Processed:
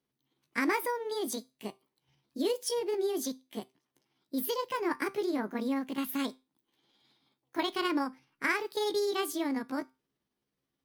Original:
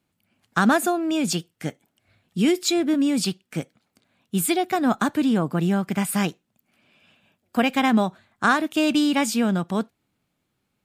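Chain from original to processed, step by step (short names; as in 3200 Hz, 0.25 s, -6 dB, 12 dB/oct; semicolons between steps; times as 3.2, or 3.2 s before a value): delay-line pitch shifter +5.5 st; notch 7000 Hz, Q 12; resonator 130 Hz, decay 0.28 s, harmonics all, mix 40%; gain -6 dB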